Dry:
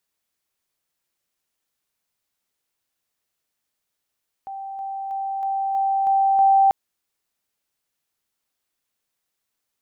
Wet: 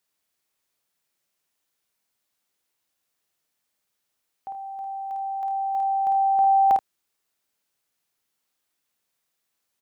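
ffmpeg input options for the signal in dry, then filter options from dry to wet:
-f lavfi -i "aevalsrc='pow(10,(-30+3*floor(t/0.32))/20)*sin(2*PI*781*t)':d=2.24:s=44100"
-filter_complex "[0:a]lowshelf=f=75:g=-7,asplit=2[a][b];[b]aecho=0:1:52|79:0.596|0.282[c];[a][c]amix=inputs=2:normalize=0"

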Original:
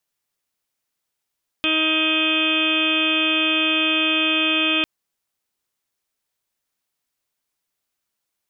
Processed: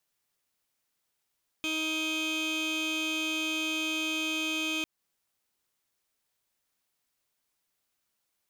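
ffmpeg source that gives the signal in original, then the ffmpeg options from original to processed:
-f lavfi -i "aevalsrc='0.0631*sin(2*PI*315*t)+0.0299*sin(2*PI*630*t)+0.00891*sin(2*PI*945*t)+0.0335*sin(2*PI*1260*t)+0.0211*sin(2*PI*1575*t)+0.0133*sin(2*PI*1890*t)+0.0126*sin(2*PI*2205*t)+0.0944*sin(2*PI*2520*t)+0.0316*sin(2*PI*2835*t)+0.0668*sin(2*PI*3150*t)+0.0422*sin(2*PI*3465*t)':d=3.2:s=44100"
-af "alimiter=limit=-18.5dB:level=0:latency=1:release=186,volume=28dB,asoftclip=hard,volume=-28dB"

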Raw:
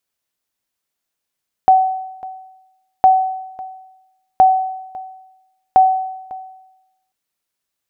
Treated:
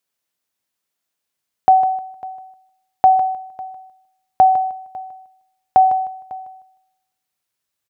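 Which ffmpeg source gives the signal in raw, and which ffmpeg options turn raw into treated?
-f lavfi -i "aevalsrc='0.668*(sin(2*PI*755*mod(t,1.36))*exp(-6.91*mod(t,1.36)/0.95)+0.0944*sin(2*PI*755*max(mod(t,1.36)-0.55,0))*exp(-6.91*max(mod(t,1.36)-0.55,0)/0.95))':d=5.44:s=44100"
-af "highpass=100,asubboost=boost=2.5:cutoff=130,aecho=1:1:154|308|462:0.251|0.0578|0.0133"

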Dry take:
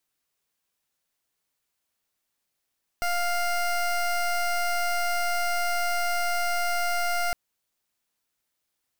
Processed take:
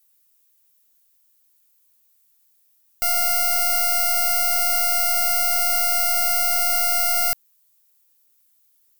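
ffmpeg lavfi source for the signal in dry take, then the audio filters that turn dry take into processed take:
-f lavfi -i "aevalsrc='0.0531*(2*lt(mod(701*t,1),0.2)-1)':d=4.31:s=44100"
-af "aemphasis=mode=production:type=75fm"

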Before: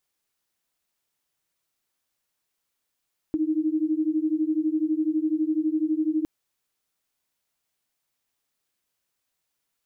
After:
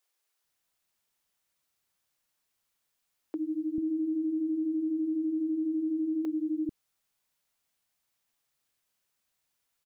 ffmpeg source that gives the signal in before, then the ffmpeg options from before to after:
-f lavfi -i "aevalsrc='0.0596*(sin(2*PI*306*t)+sin(2*PI*318*t))':d=2.91:s=44100"
-filter_complex "[0:a]acrossover=split=340[a][b];[a]adelay=440[c];[c][b]amix=inputs=2:normalize=0,alimiter=level_in=1.5dB:limit=-24dB:level=0:latency=1:release=58,volume=-1.5dB"

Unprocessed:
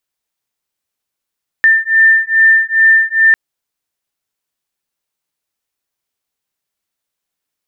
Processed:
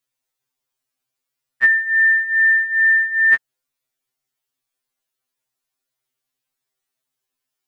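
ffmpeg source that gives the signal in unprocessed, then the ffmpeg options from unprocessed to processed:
-f lavfi -i "aevalsrc='0.316*(sin(2*PI*1790*t)+sin(2*PI*1792.4*t))':d=1.7:s=44100"
-af "afftfilt=real='re*2.45*eq(mod(b,6),0)':imag='im*2.45*eq(mod(b,6),0)':win_size=2048:overlap=0.75"

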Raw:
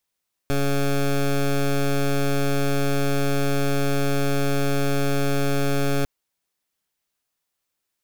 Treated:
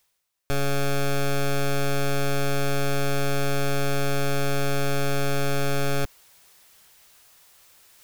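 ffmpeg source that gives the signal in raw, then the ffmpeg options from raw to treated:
-f lavfi -i "aevalsrc='0.0944*(2*lt(mod(140*t,1),0.14)-1)':d=5.55:s=44100"
-af "equalizer=f=250:w=1.2:g=-7.5,areverse,acompressor=mode=upward:threshold=-34dB:ratio=2.5,areverse"

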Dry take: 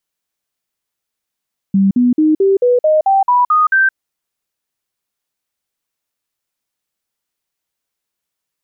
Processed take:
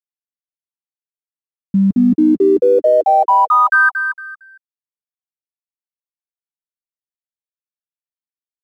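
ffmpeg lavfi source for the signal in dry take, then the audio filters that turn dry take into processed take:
-f lavfi -i "aevalsrc='0.398*clip(min(mod(t,0.22),0.17-mod(t,0.22))/0.005,0,1)*sin(2*PI*195*pow(2,floor(t/0.22)/3)*mod(t,0.22))':d=2.2:s=44100"
-filter_complex "[0:a]equalizer=f=140:t=o:w=0.28:g=-5.5,aeval=exprs='sgn(val(0))*max(abs(val(0))-0.00631,0)':c=same,asplit=2[a][b];[b]aecho=0:1:229|458|687:0.422|0.11|0.0285[c];[a][c]amix=inputs=2:normalize=0"

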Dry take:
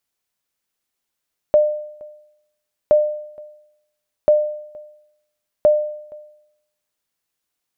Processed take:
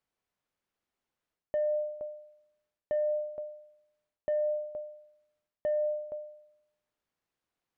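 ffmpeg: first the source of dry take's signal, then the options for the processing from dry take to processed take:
-f lavfi -i "aevalsrc='0.473*(sin(2*PI*602*mod(t,1.37))*exp(-6.91*mod(t,1.37)/0.77)+0.0473*sin(2*PI*602*max(mod(t,1.37)-0.47,0))*exp(-6.91*max(mod(t,1.37)-0.47,0)/0.77))':d=5.48:s=44100"
-af "asoftclip=type=tanh:threshold=-10.5dB,areverse,acompressor=threshold=-27dB:ratio=16,areverse,lowpass=f=1.4k:p=1"

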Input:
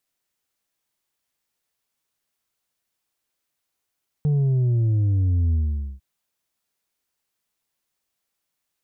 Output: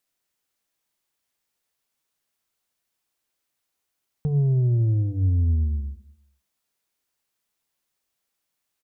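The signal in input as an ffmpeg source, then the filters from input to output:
-f lavfi -i "aevalsrc='0.133*clip((1.75-t)/0.47,0,1)*tanh(1.58*sin(2*PI*150*1.75/log(65/150)*(exp(log(65/150)*t/1.75)-1)))/tanh(1.58)':d=1.75:s=44100"
-af "bandreject=f=50:t=h:w=6,bandreject=f=100:t=h:w=6,bandreject=f=150:t=h:w=6,bandreject=f=200:t=h:w=6,aecho=1:1:208|416:0.0841|0.0252"

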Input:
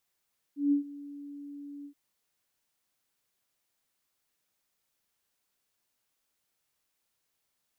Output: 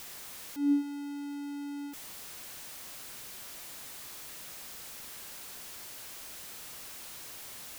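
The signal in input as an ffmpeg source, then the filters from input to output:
-f lavfi -i "aevalsrc='0.0944*sin(2*PI*286*t)':d=1.376:s=44100,afade=t=in:d=0.159,afade=t=out:st=0.159:d=0.112:silence=0.1,afade=t=out:st=1.29:d=0.086"
-af "aeval=exprs='val(0)+0.5*0.0112*sgn(val(0))':c=same"

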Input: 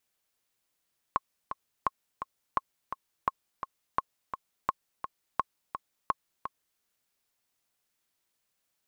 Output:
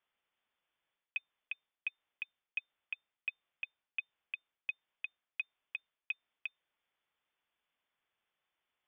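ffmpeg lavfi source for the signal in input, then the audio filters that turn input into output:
-f lavfi -i "aevalsrc='pow(10,(-12-9*gte(mod(t,2*60/170),60/170))/20)*sin(2*PI*1080*mod(t,60/170))*exp(-6.91*mod(t,60/170)/0.03)':d=5.64:s=44100"
-af "areverse,acompressor=threshold=-36dB:ratio=6,areverse,lowpass=f=3.1k:t=q:w=0.5098,lowpass=f=3.1k:t=q:w=0.6013,lowpass=f=3.1k:t=q:w=0.9,lowpass=f=3.1k:t=q:w=2.563,afreqshift=-3600"

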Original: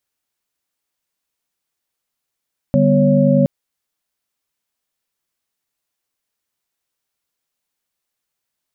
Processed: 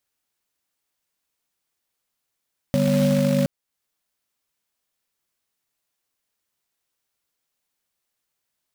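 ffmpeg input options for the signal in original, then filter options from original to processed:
-f lavfi -i "aevalsrc='0.168*(sin(2*PI*146.83*t)+sin(2*PI*196*t)+sin(2*PI*246.94*t)+sin(2*PI*554.37*t))':d=0.72:s=44100"
-af "alimiter=limit=-11.5dB:level=0:latency=1:release=448,acrusher=bits=3:mode=log:mix=0:aa=0.000001"

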